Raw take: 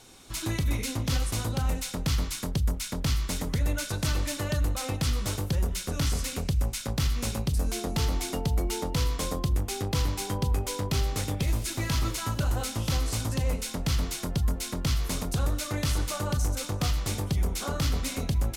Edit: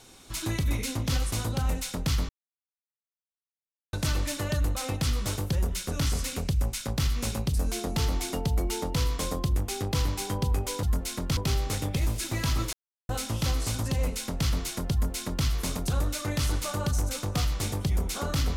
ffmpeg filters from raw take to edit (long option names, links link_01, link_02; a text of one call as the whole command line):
ffmpeg -i in.wav -filter_complex "[0:a]asplit=7[link_01][link_02][link_03][link_04][link_05][link_06][link_07];[link_01]atrim=end=2.29,asetpts=PTS-STARTPTS,afade=type=out:start_time=2.286:duration=0.004:curve=hsin[link_08];[link_02]atrim=start=2.29:end=3.93,asetpts=PTS-STARTPTS,volume=0[link_09];[link_03]atrim=start=3.93:end=10.832,asetpts=PTS-STARTPTS,afade=type=in:duration=0.004:curve=hsin[link_10];[link_04]atrim=start=14.378:end=14.922[link_11];[link_05]atrim=start=10.828:end=12.19,asetpts=PTS-STARTPTS,afade=type=out:start_time=1.358:duration=0.004:curve=hsin[link_12];[link_06]atrim=start=12.19:end=12.55,asetpts=PTS-STARTPTS,volume=0[link_13];[link_07]atrim=start=12.55,asetpts=PTS-STARTPTS,afade=type=in:duration=0.004:curve=hsin[link_14];[link_08][link_09][link_10]concat=n=3:v=0:a=1[link_15];[link_15][link_11]acrossfade=duration=0.004:curve1=hsin:curve2=hsin[link_16];[link_12][link_13][link_14]concat=n=3:v=0:a=1[link_17];[link_16][link_17]acrossfade=duration=0.004:curve1=hsin:curve2=hsin" out.wav